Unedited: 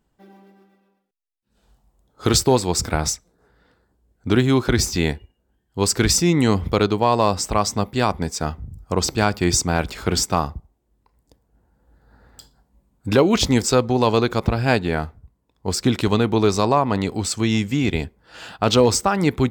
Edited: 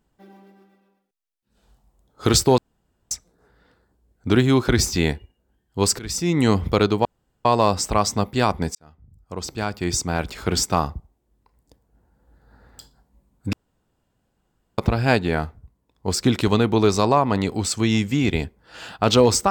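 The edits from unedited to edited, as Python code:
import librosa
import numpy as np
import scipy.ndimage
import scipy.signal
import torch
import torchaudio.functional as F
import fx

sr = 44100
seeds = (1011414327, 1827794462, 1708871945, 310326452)

y = fx.edit(x, sr, fx.room_tone_fill(start_s=2.58, length_s=0.53),
    fx.fade_in_from(start_s=5.99, length_s=0.49, floor_db=-23.0),
    fx.insert_room_tone(at_s=7.05, length_s=0.4),
    fx.fade_in_span(start_s=8.35, length_s=2.08),
    fx.room_tone_fill(start_s=13.13, length_s=1.25), tone=tone)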